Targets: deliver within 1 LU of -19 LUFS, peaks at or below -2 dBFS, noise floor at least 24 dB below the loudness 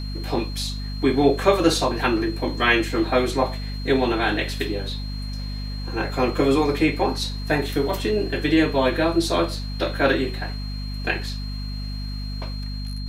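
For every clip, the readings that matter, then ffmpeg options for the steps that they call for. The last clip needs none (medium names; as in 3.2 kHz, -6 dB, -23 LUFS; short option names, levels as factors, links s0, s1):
hum 50 Hz; highest harmonic 250 Hz; hum level -27 dBFS; steady tone 4.2 kHz; tone level -38 dBFS; loudness -23.0 LUFS; peak level -4.5 dBFS; loudness target -19.0 LUFS
-> -af "bandreject=f=50:t=h:w=6,bandreject=f=100:t=h:w=6,bandreject=f=150:t=h:w=6,bandreject=f=200:t=h:w=6,bandreject=f=250:t=h:w=6"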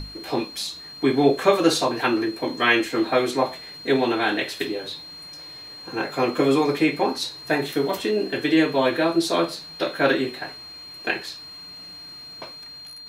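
hum not found; steady tone 4.2 kHz; tone level -38 dBFS
-> -af "bandreject=f=4200:w=30"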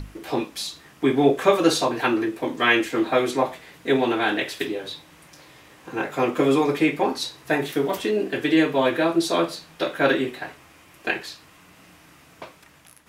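steady tone not found; loudness -23.0 LUFS; peak level -4.0 dBFS; loudness target -19.0 LUFS
-> -af "volume=1.58,alimiter=limit=0.794:level=0:latency=1"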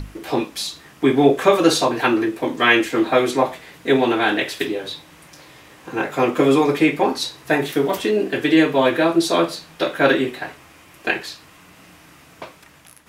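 loudness -19.0 LUFS; peak level -2.0 dBFS; noise floor -48 dBFS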